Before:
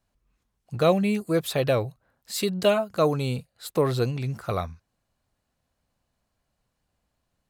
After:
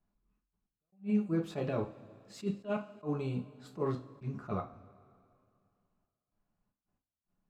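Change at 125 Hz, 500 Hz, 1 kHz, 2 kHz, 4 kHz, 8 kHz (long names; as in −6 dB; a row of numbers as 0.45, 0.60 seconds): −10.5, −14.5, −13.5, −15.5, −21.5, −22.0 decibels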